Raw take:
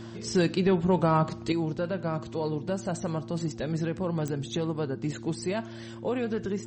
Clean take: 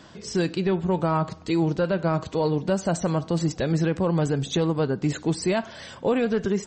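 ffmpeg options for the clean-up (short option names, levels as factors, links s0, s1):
-af "adeclick=t=4,bandreject=f=114.1:t=h:w=4,bandreject=f=228.2:t=h:w=4,bandreject=f=342.3:t=h:w=4,asetnsamples=n=441:p=0,asendcmd='1.52 volume volume 7dB',volume=1"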